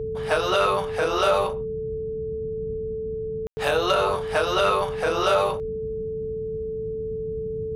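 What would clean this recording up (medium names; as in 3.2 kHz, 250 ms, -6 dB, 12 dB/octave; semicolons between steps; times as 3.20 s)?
clip repair -12 dBFS; band-stop 440 Hz, Q 30; room tone fill 3.47–3.57 s; noise print and reduce 30 dB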